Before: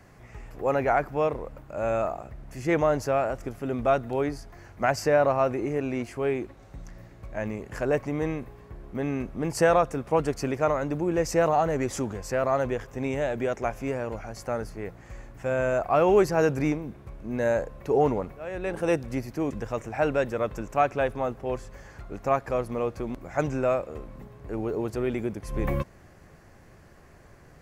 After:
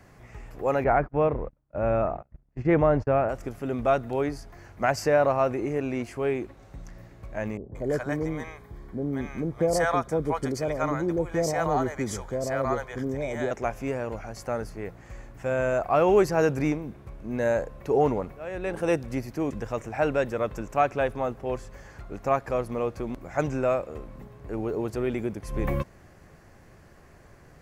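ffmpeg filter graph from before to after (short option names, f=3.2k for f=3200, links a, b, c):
-filter_complex "[0:a]asettb=1/sr,asplit=3[a][b][c];[a]atrim=end=0.844[d];[b]atrim=start=0.84:end=3.29,asetpts=PTS-STARTPTS,afade=t=in:d=0.004:c=qsin,afade=t=out:st=2.446:d=0.004:c=qsin,lowpass=2.3k,agate=range=-34dB:threshold=-38dB:ratio=16:release=100:detection=peak,lowshelf=f=290:g=7.5[e];[c]atrim=start=3.286[f];[d][e]acrossfade=d=0.004:c1=hsin:c2=qsin[g];[g][f]acrossfade=d=0.004:c1=qsin:c2=hsin,asettb=1/sr,asplit=3[h][i][j];[h]atrim=end=7.574[k];[i]atrim=start=7.57:end=13.51,asetpts=PTS-STARTPTS,afade=t=in:d=0.004:c=qsin,afade=t=out:st=5.936:d=0.004:c=qsin,asuperstop=centerf=2700:order=8:qfactor=7.1,acrossover=split=650[l][m];[m]adelay=180[n];[l][n]amix=inputs=2:normalize=0,atrim=end_sample=261954[o];[j]atrim=start=13.506[p];[k][o]acrossfade=d=0.004:c1=hsin:c2=qsin[q];[q][p]acrossfade=d=0.004:c1=qsin:c2=hsin"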